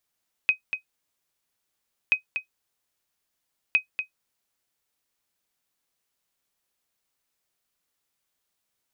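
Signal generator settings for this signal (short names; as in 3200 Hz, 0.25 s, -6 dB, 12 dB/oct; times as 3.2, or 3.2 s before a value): sonar ping 2520 Hz, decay 0.11 s, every 1.63 s, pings 3, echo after 0.24 s, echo -8.5 dB -10.5 dBFS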